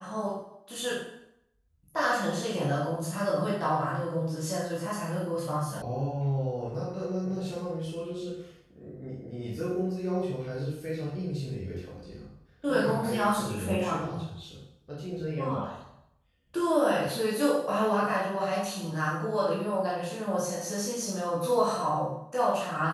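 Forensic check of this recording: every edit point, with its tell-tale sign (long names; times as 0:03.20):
0:05.82: cut off before it has died away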